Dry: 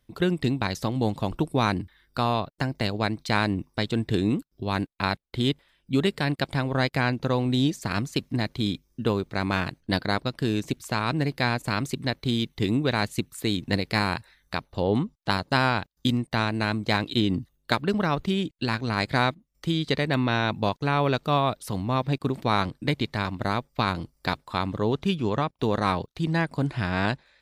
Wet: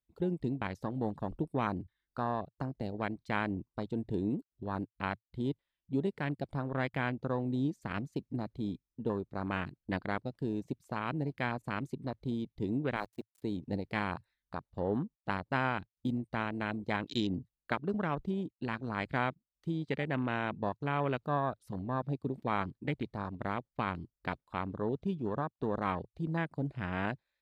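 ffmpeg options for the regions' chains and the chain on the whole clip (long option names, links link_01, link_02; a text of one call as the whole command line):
ffmpeg -i in.wav -filter_complex "[0:a]asettb=1/sr,asplit=3[link_01][link_02][link_03];[link_01]atrim=end=12.964[link_04];[link_02]atrim=start=12.96:end=13.42,asetpts=PTS-STARTPTS,afade=type=in:duration=0.004:curve=qsin,afade=type=out:start_time=0.456:duration=0.004:curve=qsin,highpass=frequency=370:poles=1,aeval=exprs='val(0)*gte(abs(val(0)),0.0237)':channel_layout=same[link_05];[link_03]atrim=start=13.416[link_06];[link_04][link_05]acrossfade=duration=0.004:curve1=hsin:curve2=qsin[link_07];[link_07][link_06]acrossfade=duration=0.004:curve1=qsin:curve2=hsin,afwtdn=0.0316,equalizer=frequency=110:width=5.3:gain=-5.5,volume=-8.5dB" out.wav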